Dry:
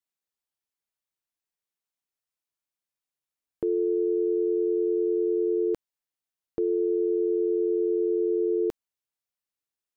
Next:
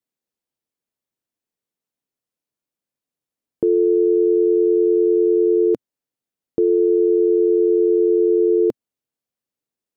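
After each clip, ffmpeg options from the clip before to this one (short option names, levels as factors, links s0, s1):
-af "equalizer=f=125:t=o:w=1:g=7,equalizer=f=250:t=o:w=1:g=10,equalizer=f=500:t=o:w=1:g=7"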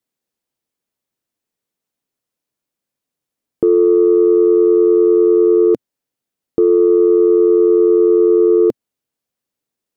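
-af "acontrast=38"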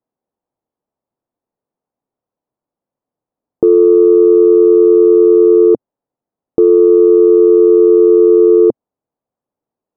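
-af "lowpass=f=850:t=q:w=1.7,volume=1.26"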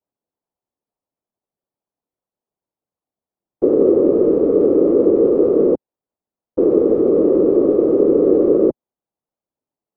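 -af "afftfilt=real='hypot(re,im)*cos(2*PI*random(0))':imag='hypot(re,im)*sin(2*PI*random(1))':win_size=512:overlap=0.75"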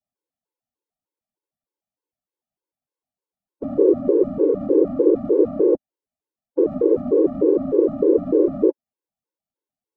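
-af "afftfilt=real='re*gt(sin(2*PI*3.3*pts/sr)*(1-2*mod(floor(b*sr/1024/280),2)),0)':imag='im*gt(sin(2*PI*3.3*pts/sr)*(1-2*mod(floor(b*sr/1024/280),2)),0)':win_size=1024:overlap=0.75,volume=0.891"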